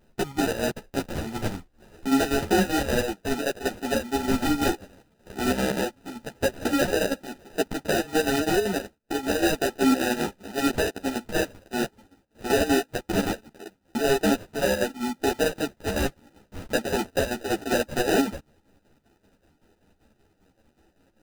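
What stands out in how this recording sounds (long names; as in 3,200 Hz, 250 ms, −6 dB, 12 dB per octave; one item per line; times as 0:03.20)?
aliases and images of a low sample rate 1,100 Hz, jitter 0%
chopped level 5.2 Hz, depth 60%, duty 65%
a shimmering, thickened sound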